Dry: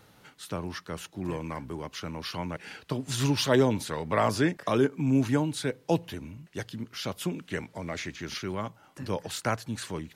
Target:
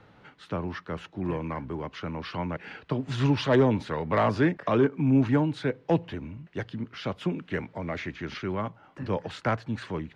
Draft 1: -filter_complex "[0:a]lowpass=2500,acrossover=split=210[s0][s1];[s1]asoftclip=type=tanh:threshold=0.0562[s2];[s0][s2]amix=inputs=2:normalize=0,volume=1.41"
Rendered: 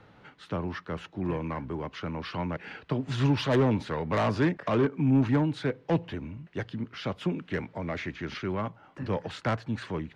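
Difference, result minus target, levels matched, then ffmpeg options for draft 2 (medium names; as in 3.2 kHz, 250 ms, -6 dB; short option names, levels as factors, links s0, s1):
saturation: distortion +9 dB
-filter_complex "[0:a]lowpass=2500,acrossover=split=210[s0][s1];[s1]asoftclip=type=tanh:threshold=0.133[s2];[s0][s2]amix=inputs=2:normalize=0,volume=1.41"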